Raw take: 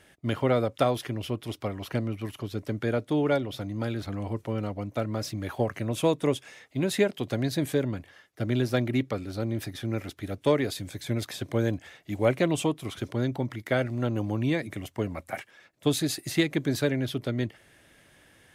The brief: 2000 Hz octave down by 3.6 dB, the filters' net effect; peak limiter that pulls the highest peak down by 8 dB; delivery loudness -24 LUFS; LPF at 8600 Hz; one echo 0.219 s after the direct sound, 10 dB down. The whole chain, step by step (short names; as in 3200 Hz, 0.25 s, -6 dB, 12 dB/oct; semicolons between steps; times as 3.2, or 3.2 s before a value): LPF 8600 Hz; bell 2000 Hz -4.5 dB; limiter -18.5 dBFS; echo 0.219 s -10 dB; gain +7.5 dB